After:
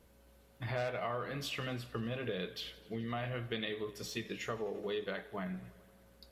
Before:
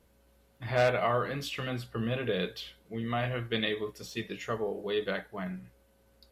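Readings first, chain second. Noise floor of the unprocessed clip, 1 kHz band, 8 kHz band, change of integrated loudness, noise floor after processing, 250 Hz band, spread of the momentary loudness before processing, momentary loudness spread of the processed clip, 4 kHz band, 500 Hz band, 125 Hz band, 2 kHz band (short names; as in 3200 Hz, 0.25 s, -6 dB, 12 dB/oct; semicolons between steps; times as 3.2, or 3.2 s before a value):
-65 dBFS, -8.0 dB, -1.5 dB, -7.0 dB, -64 dBFS, -5.5 dB, 12 LU, 5 LU, -5.5 dB, -7.5 dB, -6.0 dB, -7.0 dB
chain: compressor 3:1, threshold -39 dBFS, peak gain reduction 13.5 dB; warbling echo 86 ms, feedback 78%, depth 84 cents, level -21 dB; gain +1.5 dB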